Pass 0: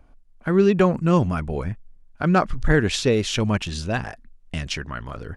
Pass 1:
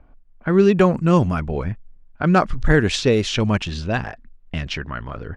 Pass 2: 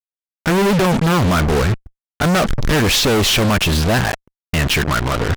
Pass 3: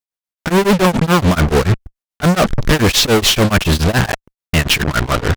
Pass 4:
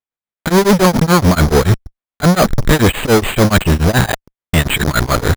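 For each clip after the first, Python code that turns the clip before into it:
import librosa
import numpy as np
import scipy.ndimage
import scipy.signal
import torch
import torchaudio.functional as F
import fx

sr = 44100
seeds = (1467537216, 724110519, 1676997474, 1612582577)

y1 = fx.env_lowpass(x, sr, base_hz=2300.0, full_db=-13.5)
y1 = y1 * librosa.db_to_amplitude(2.5)
y2 = fx.fuzz(y1, sr, gain_db=40.0, gate_db=-35.0)
y3 = y2 * np.abs(np.cos(np.pi * 7.0 * np.arange(len(y2)) / sr))
y3 = y3 * librosa.db_to_amplitude(5.0)
y4 = np.repeat(scipy.signal.resample_poly(y3, 1, 8), 8)[:len(y3)]
y4 = y4 * librosa.db_to_amplitude(2.0)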